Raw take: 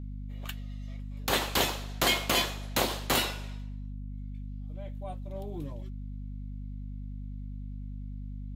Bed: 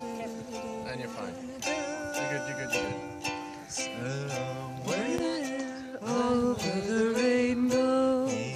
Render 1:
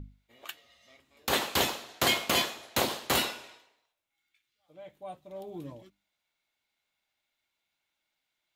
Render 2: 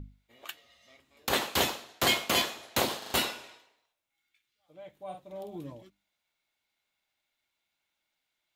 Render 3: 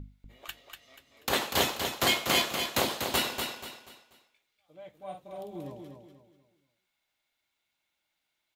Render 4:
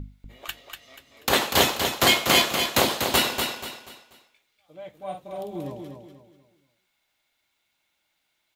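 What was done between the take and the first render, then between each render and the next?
notches 50/100/150/200/250/300 Hz
1.29–2.42 three-band expander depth 40%; 2.98 stutter in place 0.04 s, 4 plays; 4.95–5.56 doubler 48 ms -5.5 dB
feedback echo 0.242 s, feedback 34%, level -6 dB
gain +7 dB

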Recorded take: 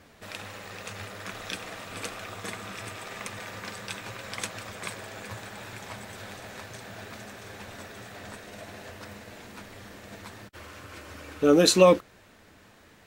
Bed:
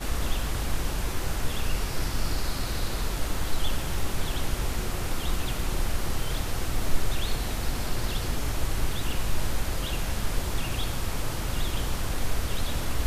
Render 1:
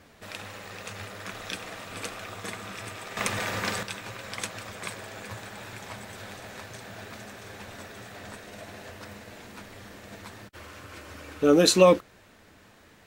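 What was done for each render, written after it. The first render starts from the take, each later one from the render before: 3.17–3.83 gain +9 dB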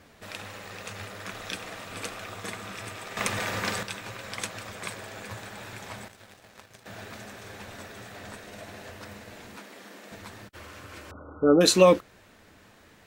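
6.08–6.86 power-law curve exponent 2; 9.57–10.12 HPF 200 Hz 24 dB/oct; 11.11–11.61 brick-wall FIR low-pass 1500 Hz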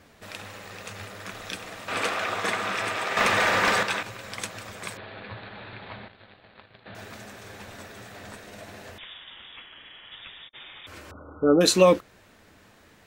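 1.88–4.03 overdrive pedal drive 21 dB, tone 2200 Hz, clips at -9 dBFS; 4.97–6.95 steep low-pass 4400 Hz 96 dB/oct; 8.98–10.87 inverted band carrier 3600 Hz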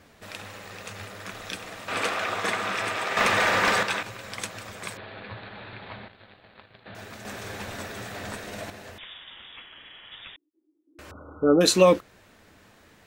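7.25–8.7 gain +6.5 dB; 10.36–10.99 Butterworth band-pass 310 Hz, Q 6.1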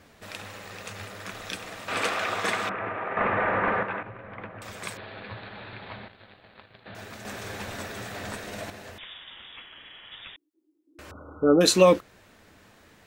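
2.69–4.62 Bessel low-pass 1400 Hz, order 6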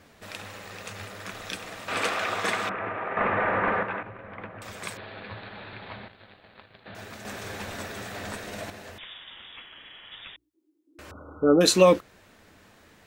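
notches 60/120 Hz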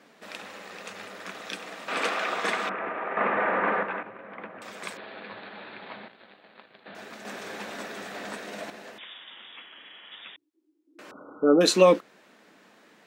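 HPF 190 Hz 24 dB/oct; high shelf 8100 Hz -9 dB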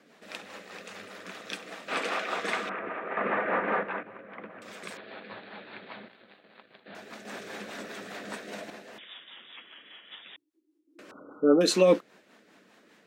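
rotary speaker horn 5 Hz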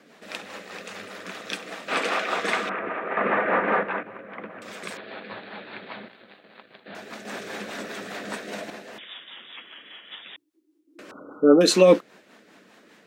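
gain +5.5 dB

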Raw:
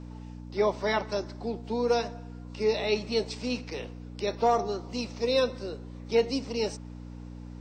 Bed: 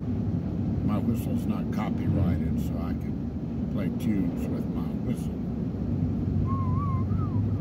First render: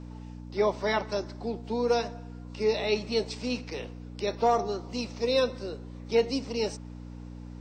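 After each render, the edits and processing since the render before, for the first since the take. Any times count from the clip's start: nothing audible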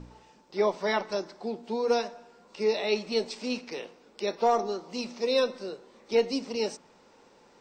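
de-hum 60 Hz, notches 5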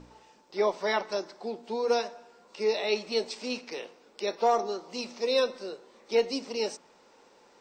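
tone controls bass -8 dB, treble +1 dB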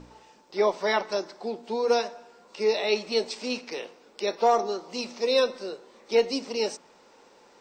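gain +3 dB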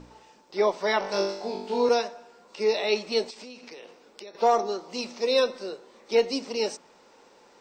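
1–1.89 flutter echo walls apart 3.5 m, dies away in 0.66 s; 3.3–4.35 compressor 8:1, threshold -40 dBFS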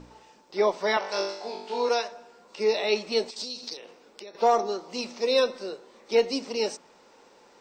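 0.97–2.12 weighting filter A; 3.36–3.77 resonant high shelf 3100 Hz +9 dB, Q 3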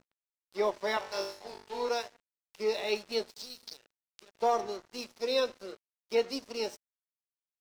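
resonator 120 Hz, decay 0.42 s, harmonics odd, mix 50%; crossover distortion -46 dBFS

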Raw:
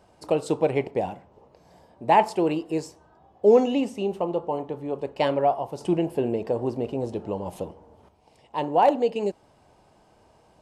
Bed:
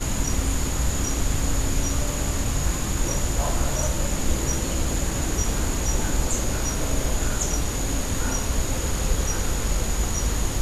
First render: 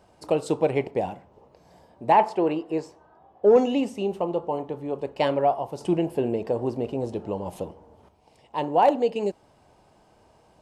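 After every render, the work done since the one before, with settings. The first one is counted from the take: 2.12–3.56 overdrive pedal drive 10 dB, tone 1100 Hz, clips at -5.5 dBFS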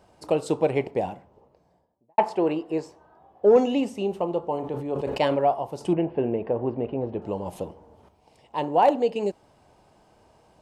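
0.98–2.18 studio fade out; 4.59–5.38 sustainer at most 46 dB/s; 5.93–7.22 LPF 2700 Hz 24 dB/oct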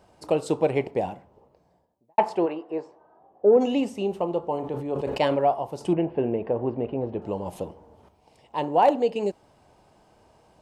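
2.45–3.6 band-pass 1100 Hz -> 310 Hz, Q 0.65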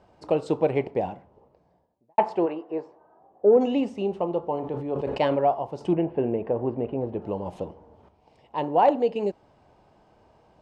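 LPF 6500 Hz 12 dB/oct; high shelf 3500 Hz -7.5 dB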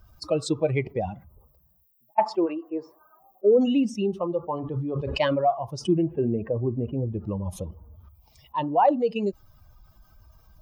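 per-bin expansion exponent 2; fast leveller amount 50%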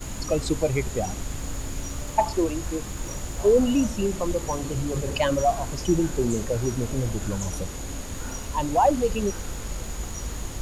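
add bed -8.5 dB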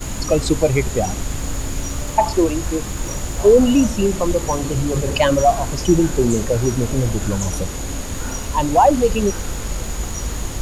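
gain +7.5 dB; limiter -3 dBFS, peak gain reduction 2.5 dB

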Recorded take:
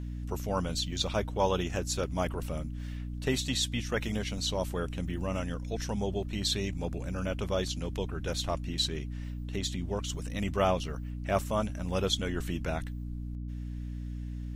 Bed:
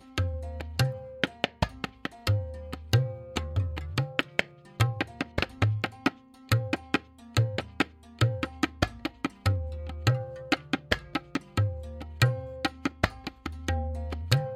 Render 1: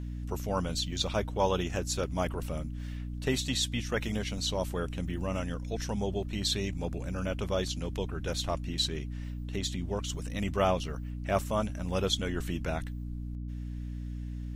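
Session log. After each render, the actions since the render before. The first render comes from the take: nothing audible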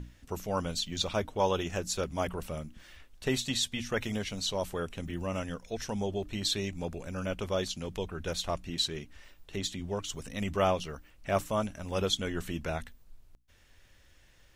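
notches 60/120/180/240/300 Hz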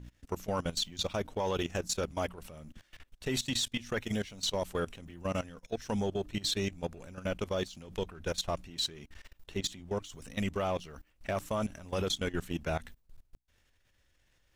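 level quantiser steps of 17 dB; sample leveller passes 1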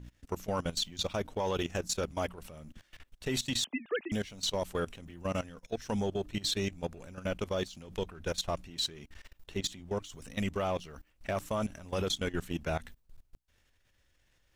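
3.64–4.12 sine-wave speech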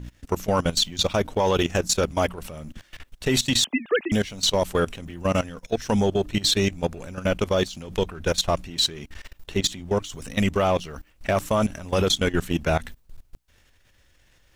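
gain +11 dB

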